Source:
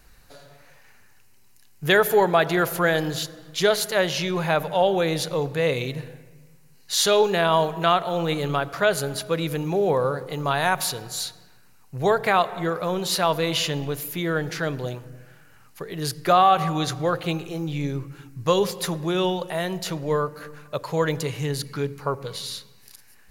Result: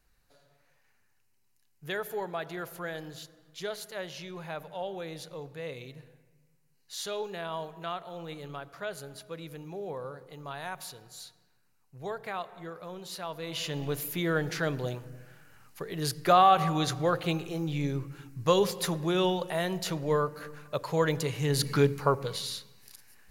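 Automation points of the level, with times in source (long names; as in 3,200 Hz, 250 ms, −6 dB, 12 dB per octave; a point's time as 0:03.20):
0:13.34 −16.5 dB
0:13.92 −3.5 dB
0:21.40 −3.5 dB
0:21.71 +5 dB
0:22.57 −4 dB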